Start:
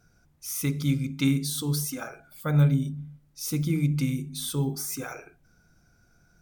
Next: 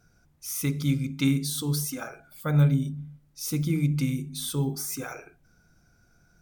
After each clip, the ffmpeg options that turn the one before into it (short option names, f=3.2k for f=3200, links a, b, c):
-af anull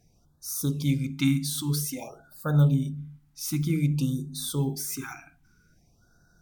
-af "afftfilt=real='re*(1-between(b*sr/1024,450*pow(2600/450,0.5+0.5*sin(2*PI*0.52*pts/sr))/1.41,450*pow(2600/450,0.5+0.5*sin(2*PI*0.52*pts/sr))*1.41))':imag='im*(1-between(b*sr/1024,450*pow(2600/450,0.5+0.5*sin(2*PI*0.52*pts/sr))/1.41,450*pow(2600/450,0.5+0.5*sin(2*PI*0.52*pts/sr))*1.41))':win_size=1024:overlap=0.75"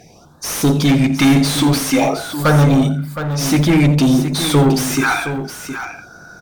-filter_complex "[0:a]asplit=2[a][b];[b]highpass=f=720:p=1,volume=30dB,asoftclip=type=tanh:threshold=-10.5dB[c];[a][c]amix=inputs=2:normalize=0,lowpass=f=1.8k:p=1,volume=-6dB,asplit=2[d][e];[e]aecho=0:1:85|716:0.178|0.316[f];[d][f]amix=inputs=2:normalize=0,volume=7dB"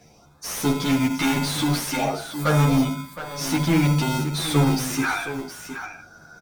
-filter_complex "[0:a]acrossover=split=310|1600|2400[a][b][c][d];[a]acrusher=samples=38:mix=1:aa=0.000001[e];[e][b][c][d]amix=inputs=4:normalize=0,asplit=2[f][g];[g]adelay=10.9,afreqshift=-0.45[h];[f][h]amix=inputs=2:normalize=1,volume=-4.5dB"